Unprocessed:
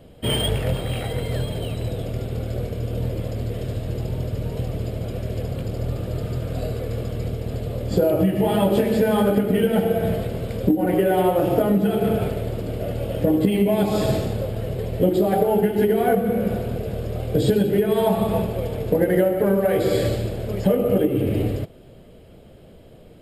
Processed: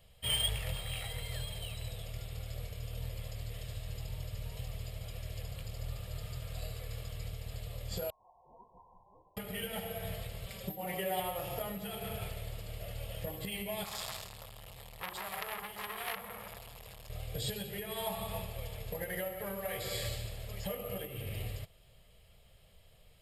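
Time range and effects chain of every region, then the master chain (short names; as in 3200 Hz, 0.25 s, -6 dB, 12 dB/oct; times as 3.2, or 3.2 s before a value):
8.1–9.37 brick-wall FIR high-pass 2500 Hz + inverted band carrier 3600 Hz
10.46–11.2 HPF 77 Hz + comb 5.2 ms, depth 73%
13.84–17.1 tilt shelf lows -4 dB, about 1100 Hz + core saturation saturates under 2100 Hz
whole clip: passive tone stack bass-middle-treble 10-0-10; notch 1500 Hz, Q 8.9; gain -3.5 dB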